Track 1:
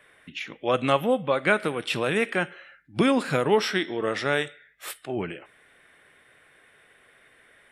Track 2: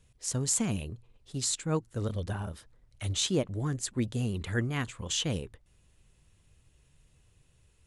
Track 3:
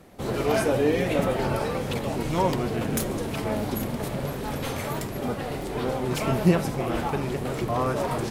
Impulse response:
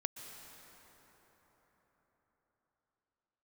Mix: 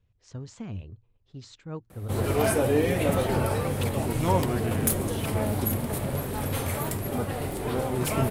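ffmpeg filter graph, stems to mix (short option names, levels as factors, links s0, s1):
-filter_complex "[1:a]lowpass=f=5900:w=0.5412,lowpass=f=5900:w=1.3066,highshelf=f=3500:g=-12,volume=0.422[s0];[2:a]highshelf=f=7600:t=q:w=1.5:g=6.5,adelay=1900,volume=0.891[s1];[s0][s1]amix=inputs=2:normalize=0,equalizer=f=94:t=o:w=0.35:g=11"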